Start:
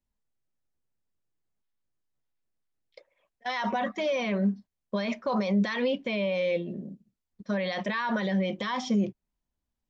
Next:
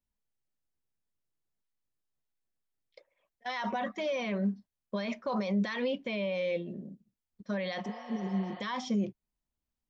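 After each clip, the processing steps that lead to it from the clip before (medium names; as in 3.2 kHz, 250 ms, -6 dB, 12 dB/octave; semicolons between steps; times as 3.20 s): spectral replace 7.87–8.58 s, 480–4900 Hz before; trim -4.5 dB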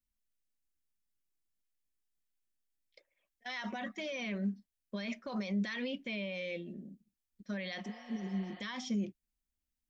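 graphic EQ 125/500/1000/4000 Hz -11/-8/-11/-3 dB; trim +1 dB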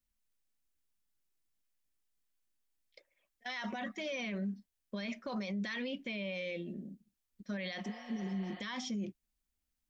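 peak limiter -33.5 dBFS, peak gain reduction 7.5 dB; trim +2.5 dB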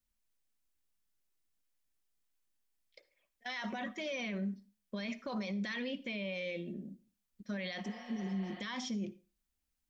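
reverberation RT60 0.30 s, pre-delay 48 ms, DRR 16.5 dB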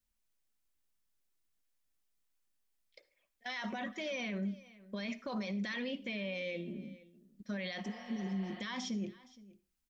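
delay 468 ms -20.5 dB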